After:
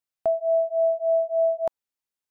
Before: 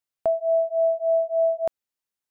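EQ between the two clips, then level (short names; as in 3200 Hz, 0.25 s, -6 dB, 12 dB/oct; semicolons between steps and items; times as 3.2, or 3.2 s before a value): dynamic EQ 930 Hz, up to +6 dB, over -38 dBFS, Q 2; -2.5 dB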